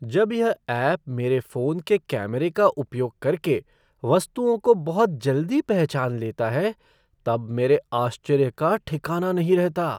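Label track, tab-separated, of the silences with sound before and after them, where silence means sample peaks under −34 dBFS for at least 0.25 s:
3.590000	4.030000	silence
6.720000	7.260000	silence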